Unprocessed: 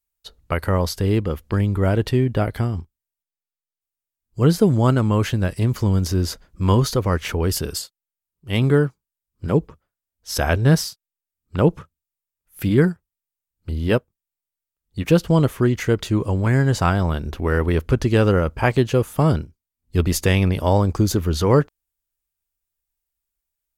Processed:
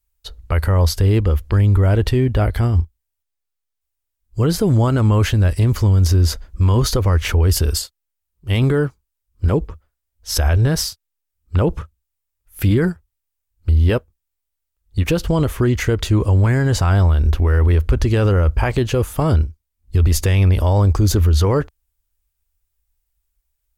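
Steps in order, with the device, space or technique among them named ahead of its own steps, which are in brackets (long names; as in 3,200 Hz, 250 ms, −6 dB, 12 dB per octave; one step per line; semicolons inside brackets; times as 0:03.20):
car stereo with a boomy subwoofer (low shelf with overshoot 100 Hz +11 dB, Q 1.5; brickwall limiter −13 dBFS, peak gain reduction 11 dB)
level +5 dB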